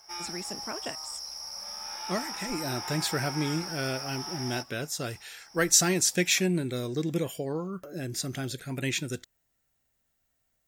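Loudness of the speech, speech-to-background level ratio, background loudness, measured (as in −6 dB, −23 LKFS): −29.5 LKFS, 6.5 dB, −36.0 LKFS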